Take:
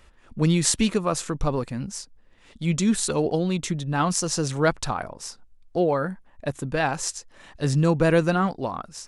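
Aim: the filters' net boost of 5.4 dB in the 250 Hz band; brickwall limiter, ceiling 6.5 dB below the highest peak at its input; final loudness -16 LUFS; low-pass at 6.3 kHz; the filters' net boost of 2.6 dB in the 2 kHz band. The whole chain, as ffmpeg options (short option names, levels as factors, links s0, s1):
-af "lowpass=6300,equalizer=f=250:t=o:g=8,equalizer=f=2000:t=o:g=3.5,volume=2.37,alimiter=limit=0.631:level=0:latency=1"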